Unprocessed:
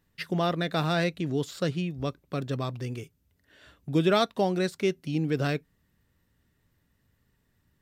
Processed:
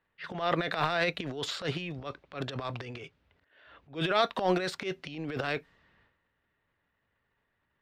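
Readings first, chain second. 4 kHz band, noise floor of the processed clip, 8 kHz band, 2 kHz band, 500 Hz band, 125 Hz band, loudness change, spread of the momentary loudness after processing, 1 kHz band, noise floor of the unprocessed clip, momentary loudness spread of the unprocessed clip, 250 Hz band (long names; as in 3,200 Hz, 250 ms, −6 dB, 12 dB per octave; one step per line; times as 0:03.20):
−0.5 dB, −79 dBFS, −3.5 dB, +1.0 dB, −4.0 dB, −9.0 dB, −3.5 dB, 14 LU, 0.0 dB, −72 dBFS, 11 LU, −8.0 dB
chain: three-way crossover with the lows and the highs turned down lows −15 dB, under 470 Hz, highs −16 dB, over 4,300 Hz
transient designer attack −11 dB, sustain +12 dB
low-pass that shuts in the quiet parts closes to 2,800 Hz, open at −31.5 dBFS
level +1.5 dB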